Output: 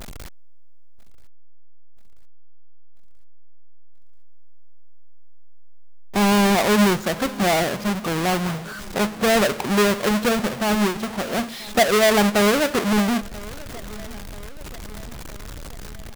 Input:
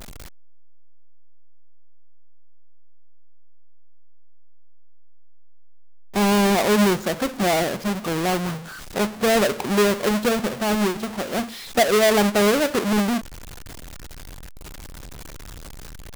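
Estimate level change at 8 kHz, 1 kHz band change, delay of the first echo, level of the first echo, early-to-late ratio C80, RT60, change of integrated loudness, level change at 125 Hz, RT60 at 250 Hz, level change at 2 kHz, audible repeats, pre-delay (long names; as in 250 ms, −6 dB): +1.0 dB, +1.5 dB, 984 ms, −21.0 dB, no reverb audible, no reverb audible, +1.0 dB, +1.5 dB, no reverb audible, +2.0 dB, 3, no reverb audible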